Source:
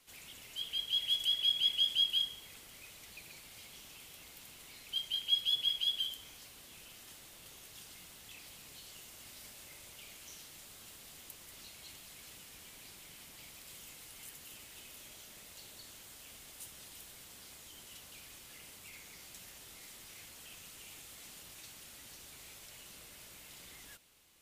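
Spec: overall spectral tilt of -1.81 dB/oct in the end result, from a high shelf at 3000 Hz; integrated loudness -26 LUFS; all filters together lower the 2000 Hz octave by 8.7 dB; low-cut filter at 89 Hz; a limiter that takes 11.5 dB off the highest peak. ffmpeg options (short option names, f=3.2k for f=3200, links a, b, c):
-af "highpass=89,equalizer=f=2k:t=o:g=-7.5,highshelf=f=3k:g=-8.5,volume=24.5dB,alimiter=limit=-12.5dB:level=0:latency=1"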